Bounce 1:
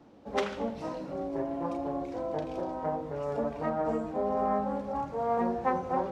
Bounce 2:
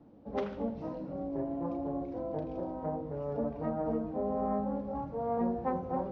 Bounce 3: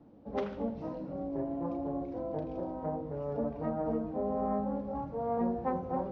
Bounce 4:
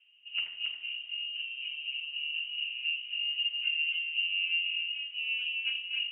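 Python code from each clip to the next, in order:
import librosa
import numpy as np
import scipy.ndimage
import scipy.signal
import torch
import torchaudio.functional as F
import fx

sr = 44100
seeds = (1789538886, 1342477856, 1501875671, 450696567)

y1 = scipy.signal.sosfilt(scipy.signal.butter(4, 5600.0, 'lowpass', fs=sr, output='sos'), x)
y1 = fx.tilt_shelf(y1, sr, db=8.0, hz=870.0)
y1 = fx.notch(y1, sr, hz=380.0, q=12.0)
y1 = y1 * librosa.db_to_amplitude(-6.5)
y2 = y1
y3 = fx.highpass_res(y2, sr, hz=590.0, q=4.9)
y3 = y3 + 10.0 ** (-5.5 / 20.0) * np.pad(y3, (int(275 * sr / 1000.0), 0))[:len(y3)]
y3 = fx.freq_invert(y3, sr, carrier_hz=3400)
y3 = y3 * librosa.db_to_amplitude(-7.5)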